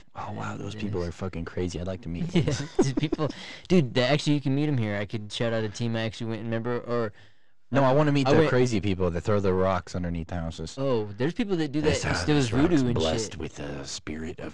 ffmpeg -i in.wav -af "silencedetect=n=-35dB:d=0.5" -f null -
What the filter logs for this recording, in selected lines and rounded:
silence_start: 7.10
silence_end: 7.72 | silence_duration: 0.62